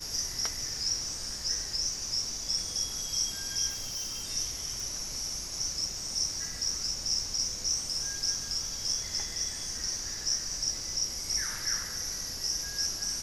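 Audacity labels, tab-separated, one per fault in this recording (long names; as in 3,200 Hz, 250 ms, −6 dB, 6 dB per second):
3.690000	4.220000	clipping −32 dBFS
4.800000	4.800000	click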